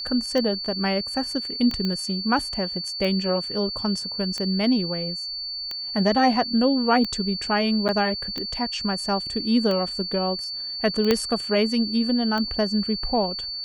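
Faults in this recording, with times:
tick 45 rpm -16 dBFS
tone 4500 Hz -29 dBFS
1.85 pop -15 dBFS
7.88–7.89 gap 8.5 ms
11.11 pop -5 dBFS

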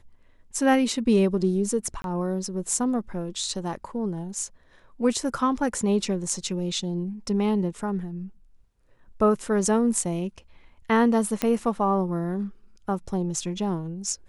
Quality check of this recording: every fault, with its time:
2.02–2.04 gap 22 ms
11.42 pop -9 dBFS

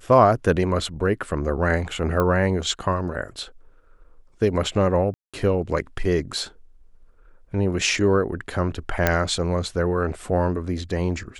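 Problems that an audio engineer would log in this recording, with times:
2.2 pop -11 dBFS
5.14–5.34 gap 0.196 s
9.07 pop -4 dBFS

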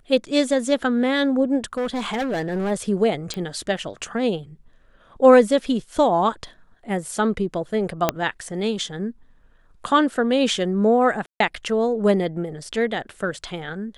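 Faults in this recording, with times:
1.73–2.72 clipped -20.5 dBFS
3.34 pop -14 dBFS
8.09 pop -3 dBFS
11.26–11.4 gap 0.143 s

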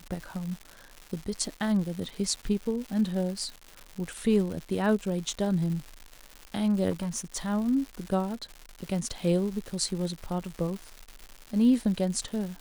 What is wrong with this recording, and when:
crackle 280/s -35 dBFS
6.9–7.47 clipped -27 dBFS

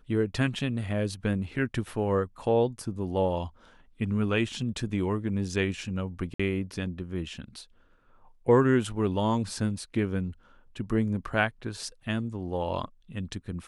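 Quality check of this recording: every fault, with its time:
6.34–6.39 gap 55 ms

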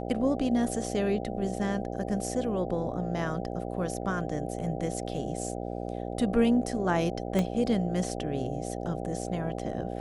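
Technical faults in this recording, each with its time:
buzz 60 Hz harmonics 13 -35 dBFS
7.39 pop -15 dBFS

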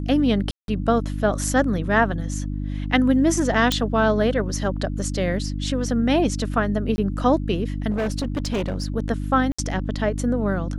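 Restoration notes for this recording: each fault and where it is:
hum 50 Hz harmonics 6 -27 dBFS
0.51–0.68 gap 0.172 s
3.72 pop -6 dBFS
6.96–6.98 gap 20 ms
7.9–8.88 clipped -20 dBFS
9.52–9.59 gap 65 ms

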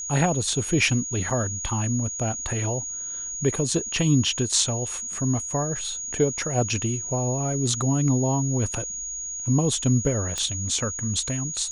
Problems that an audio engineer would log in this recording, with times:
tone 6700 Hz -30 dBFS
1.3 gap 5 ms
10.38 pop -14 dBFS

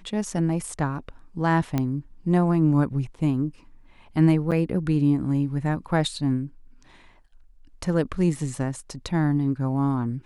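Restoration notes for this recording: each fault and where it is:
1.78 pop -12 dBFS
4.51–4.52 gap 7.6 ms

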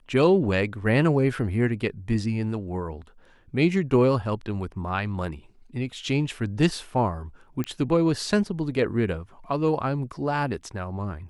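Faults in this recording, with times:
7.64 pop -16 dBFS

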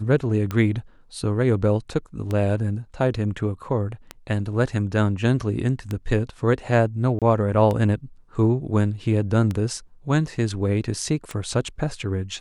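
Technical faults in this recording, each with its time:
tick 33 1/3 rpm -14 dBFS
7.19–7.22 gap 27 ms

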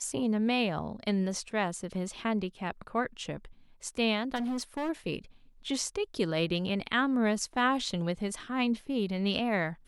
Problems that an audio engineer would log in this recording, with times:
4.35–4.9 clipped -29.5 dBFS

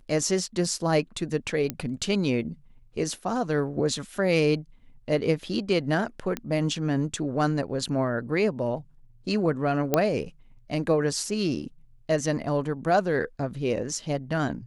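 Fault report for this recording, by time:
1.7 pop -12 dBFS
6.37 pop -15 dBFS
9.94 pop -7 dBFS

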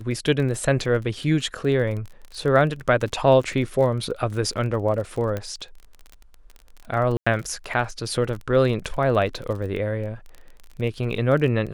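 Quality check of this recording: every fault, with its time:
crackle 25/s -31 dBFS
5.37 pop -15 dBFS
7.17–7.26 gap 95 ms

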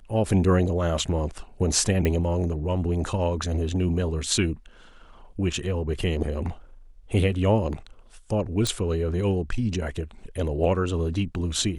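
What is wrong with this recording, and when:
2.05 pop -12 dBFS
8.67 pop

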